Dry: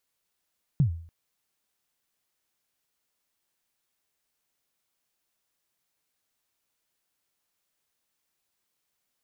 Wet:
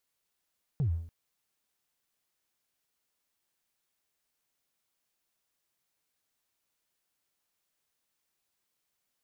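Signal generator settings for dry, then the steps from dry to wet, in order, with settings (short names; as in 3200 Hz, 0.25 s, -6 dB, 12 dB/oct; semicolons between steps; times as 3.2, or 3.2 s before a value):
kick drum length 0.29 s, from 160 Hz, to 83 Hz, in 0.103 s, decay 0.51 s, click off, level -15 dB
sample leveller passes 1; limiter -25.5 dBFS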